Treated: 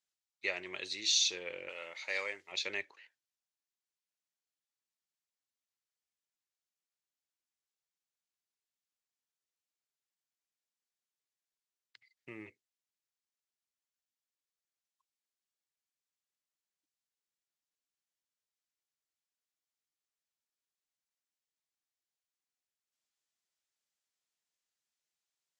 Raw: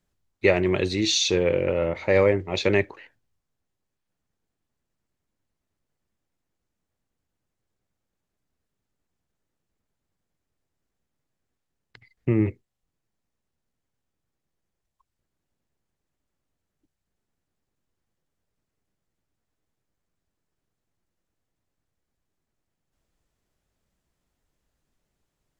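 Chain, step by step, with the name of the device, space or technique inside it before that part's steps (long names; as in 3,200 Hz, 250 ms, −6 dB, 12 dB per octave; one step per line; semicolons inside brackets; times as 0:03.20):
0:01.69–0:02.52: spectral tilt +3 dB per octave
piezo pickup straight into a mixer (low-pass filter 6,000 Hz 12 dB per octave; first difference)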